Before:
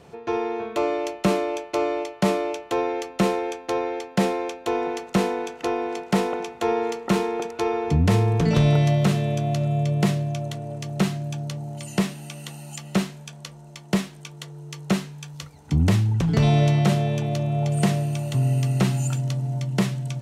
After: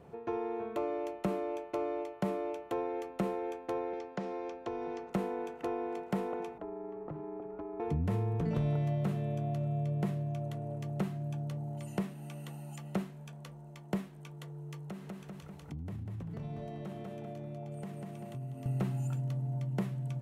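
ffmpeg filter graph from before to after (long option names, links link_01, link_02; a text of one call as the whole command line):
ffmpeg -i in.wav -filter_complex "[0:a]asettb=1/sr,asplit=3[link_01][link_02][link_03];[link_01]atrim=end=3.934[link_04];[link_02]atrim=start=3.93:end=5.11,asetpts=PTS-STARTPTS,afade=type=in:duration=0.004:curve=qsin,afade=type=out:start_time=1.176:duration=0.004:curve=qsin,acrossover=split=210|2700[link_05][link_06][link_07];[link_05]acompressor=threshold=-40dB:ratio=4[link_08];[link_06]acompressor=threshold=-29dB:ratio=4[link_09];[link_07]acompressor=threshold=-48dB:ratio=4[link_10];[link_08][link_09][link_10]amix=inputs=3:normalize=0,lowpass=frequency=5500:width_type=q:width=2.6[link_11];[link_03]atrim=start=5.106[link_12];[link_04][link_11]acrossfade=duration=0.004:curve1=hsin:curve2=qsin[link_13];[link_13][link_12]acrossfade=duration=0.004:curve1=qsin:curve2=hsin,asettb=1/sr,asplit=3[link_14][link_15][link_16];[link_14]atrim=end=6.584[link_17];[link_15]atrim=start=6.58:end=7.8,asetpts=PTS-STARTPTS,afade=type=in:duration=0.004:curve=qsin,afade=type=out:start_time=1.216:duration=0.004:curve=qsin,lowpass=1200,acompressor=threshold=-32dB:ratio=12:attack=3.2:release=140:knee=1:detection=peak,afreqshift=-40[link_18];[link_16]atrim=start=7.796[link_19];[link_17][link_18]acrossfade=duration=0.004:curve1=hsin:curve2=qsin[link_20];[link_20][link_19]acrossfade=duration=0.004:curve1=qsin:curve2=hsin,asettb=1/sr,asplit=3[link_21][link_22][link_23];[link_21]atrim=end=14.764[link_24];[link_22]atrim=start=14.76:end=18.66,asetpts=PTS-STARTPTS,afade=type=in:duration=0.004:curve=qsin,afade=type=out:start_time=3.896:duration=0.004:curve=qsin,aecho=1:1:195|390|585|780|975:0.596|0.214|0.0772|0.0278|0.01,atrim=end_sample=171990,acompressor=threshold=-36dB:ratio=4:attack=3.2:release=140:knee=1:detection=peak[link_25];[link_23]atrim=start=18.656[link_26];[link_24][link_25]acrossfade=duration=0.004:curve1=hsin:curve2=qsin[link_27];[link_27][link_26]acrossfade=duration=0.004:curve1=qsin:curve2=hsin,equalizer=frequency=5300:width_type=o:width=2.4:gain=-14.5,acompressor=threshold=-30dB:ratio=2,volume=-5dB" out.wav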